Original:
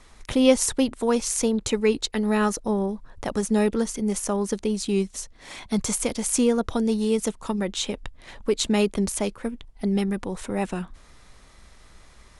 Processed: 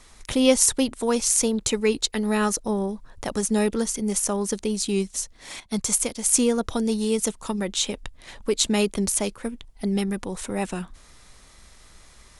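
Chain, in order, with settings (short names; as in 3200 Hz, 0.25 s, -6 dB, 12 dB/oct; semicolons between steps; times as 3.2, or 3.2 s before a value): high shelf 4000 Hz +8.5 dB; 5.6–6.34 upward expander 1.5:1, over -39 dBFS; gain -1 dB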